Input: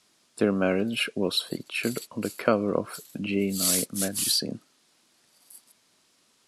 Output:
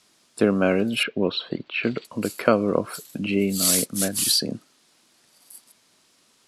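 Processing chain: 1.03–2.05 LPF 3500 Hz 24 dB/oct; gain +4 dB

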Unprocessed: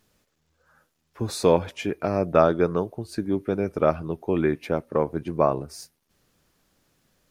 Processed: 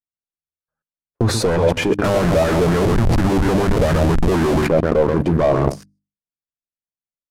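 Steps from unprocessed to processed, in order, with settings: feedback echo 0.131 s, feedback 17%, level -13 dB; gate -39 dBFS, range -20 dB; sample leveller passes 5; 2.04–4.67 Schmitt trigger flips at -21 dBFS; level quantiser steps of 23 dB; Bessel low-pass 12000 Hz, order 6; low shelf 450 Hz +10.5 dB; notches 50/100/150/200/250/300 Hz; LFO bell 4.2 Hz 540–1700 Hz +8 dB

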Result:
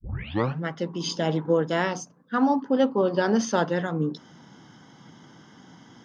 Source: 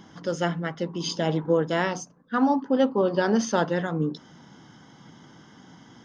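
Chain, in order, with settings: tape start at the beginning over 0.62 s; HPF 72 Hz

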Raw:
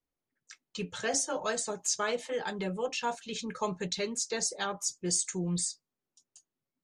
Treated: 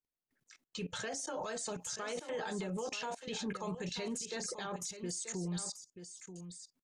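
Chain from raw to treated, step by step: level quantiser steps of 22 dB; limiter -40 dBFS, peak gain reduction 8.5 dB; echo 0.935 s -10.5 dB; gain +8.5 dB

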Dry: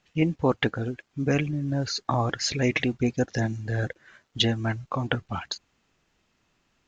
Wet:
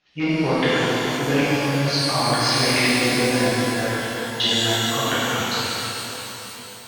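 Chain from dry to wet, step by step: high shelf 2100 Hz +8 dB; in parallel at -10.5 dB: wrapped overs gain 13.5 dB; on the sum: steep low-pass 5500 Hz; low shelf 140 Hz -7 dB; shimmer reverb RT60 3.7 s, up +12 st, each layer -8 dB, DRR -12 dB; gain -8 dB

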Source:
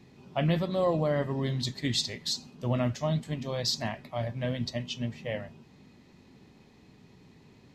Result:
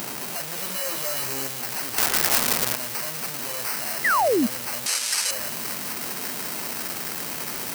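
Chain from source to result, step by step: infinite clipping; sample-rate reducer 3500 Hz, jitter 0%; HPF 78 Hz; RIAA curve recording; thin delay 0.2 s, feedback 76%, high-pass 1800 Hz, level -6.5 dB; upward compressor, threshold -28 dBFS; 0.55–1.47 doubler 15 ms -2.5 dB; 1.98–2.76 companded quantiser 2-bit; 4.04–4.47 painted sound fall 210–2100 Hz -19 dBFS; 4.86–5.31 weighting filter ITU-R 468; gain -1 dB

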